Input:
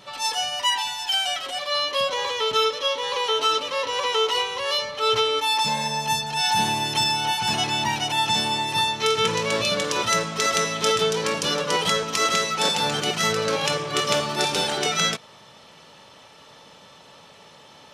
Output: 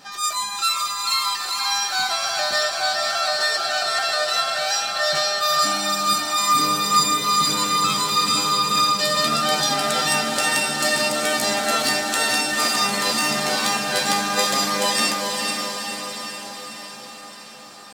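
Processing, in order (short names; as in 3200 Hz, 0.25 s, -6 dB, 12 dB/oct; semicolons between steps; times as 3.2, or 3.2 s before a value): pitch shift +5.5 st; doubler 14 ms -9 dB; diffused feedback echo 0.473 s, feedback 62%, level -3.5 dB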